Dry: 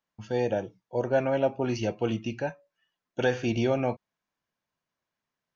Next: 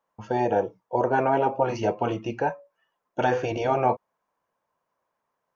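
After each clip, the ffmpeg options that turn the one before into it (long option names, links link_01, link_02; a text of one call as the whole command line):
ffmpeg -i in.wav -af "afftfilt=real='re*lt(hypot(re,im),0.282)':imag='im*lt(hypot(re,im),0.282)':win_size=1024:overlap=0.75,equalizer=frequency=500:width_type=o:width=1:gain=10,equalizer=frequency=1000:width_type=o:width=1:gain=12,equalizer=frequency=4000:width_type=o:width=1:gain=-5" out.wav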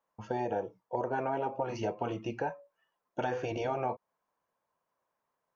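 ffmpeg -i in.wav -af "acompressor=threshold=-26dB:ratio=3,volume=-4.5dB" out.wav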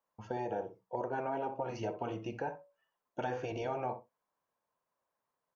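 ffmpeg -i in.wav -filter_complex "[0:a]asplit=2[link_01][link_02];[link_02]adelay=63,lowpass=frequency=1100:poles=1,volume=-9dB,asplit=2[link_03][link_04];[link_04]adelay=63,lowpass=frequency=1100:poles=1,volume=0.15[link_05];[link_01][link_03][link_05]amix=inputs=3:normalize=0,volume=-4dB" out.wav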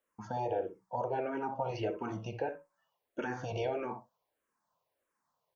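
ffmpeg -i in.wav -filter_complex "[0:a]asplit=2[link_01][link_02];[link_02]alimiter=level_in=7dB:limit=-24dB:level=0:latency=1,volume=-7dB,volume=-2dB[link_03];[link_01][link_03]amix=inputs=2:normalize=0,asplit=2[link_04][link_05];[link_05]afreqshift=-1.6[link_06];[link_04][link_06]amix=inputs=2:normalize=1,volume=1dB" out.wav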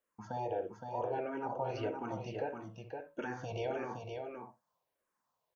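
ffmpeg -i in.wav -af "aecho=1:1:516:0.531,volume=-3dB" out.wav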